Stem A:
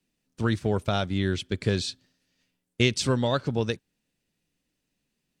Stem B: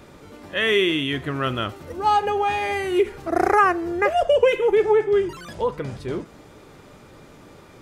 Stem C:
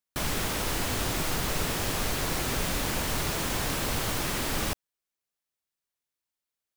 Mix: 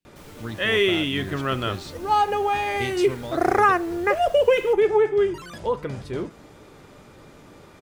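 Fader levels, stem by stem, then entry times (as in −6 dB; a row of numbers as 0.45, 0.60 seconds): −9.0, −1.0, −19.0 decibels; 0.00, 0.05, 0.00 seconds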